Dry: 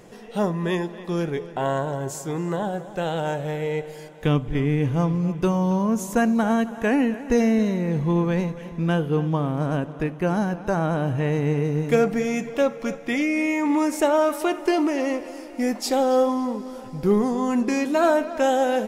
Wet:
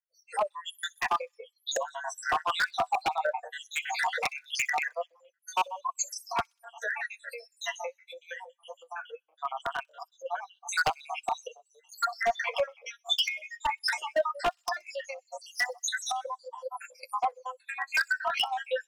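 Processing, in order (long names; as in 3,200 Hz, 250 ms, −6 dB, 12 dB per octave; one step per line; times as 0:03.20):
time-frequency cells dropped at random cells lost 82%
camcorder AGC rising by 43 dB per second
Butterworth high-pass 530 Hz 72 dB per octave
noise reduction from a noise print of the clip's start 17 dB
treble cut that deepens with the level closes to 2,200 Hz, closed at −23 dBFS
harmonic and percussive parts rebalanced harmonic −11 dB
in parallel at −2 dB: downward compressor 12 to 1, threshold −39 dBFS, peak gain reduction 19.5 dB
on the sum: flanger 0.19 Hz, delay 5.6 ms, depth 6.4 ms, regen −31%
wave folding −24 dBFS
on a send: delay with a high-pass on its return 63 ms, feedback 65%, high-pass 5,100 Hz, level −22.5 dB
on the sum: multiband upward and downward expander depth 70%
level +3 dB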